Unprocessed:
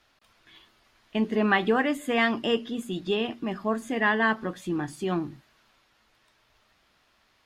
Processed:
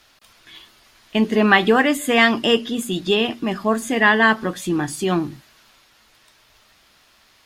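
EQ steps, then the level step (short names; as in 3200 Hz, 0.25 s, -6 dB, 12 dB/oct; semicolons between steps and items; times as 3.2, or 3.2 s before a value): high shelf 3800 Hz +9.5 dB; +7.5 dB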